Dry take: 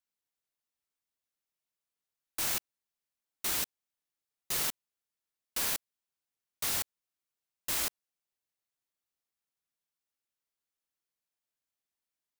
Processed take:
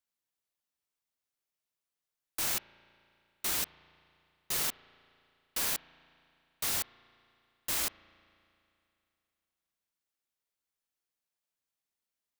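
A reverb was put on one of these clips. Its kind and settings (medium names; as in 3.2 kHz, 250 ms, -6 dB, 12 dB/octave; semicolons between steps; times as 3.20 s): spring tank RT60 2.7 s, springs 35 ms, chirp 60 ms, DRR 18 dB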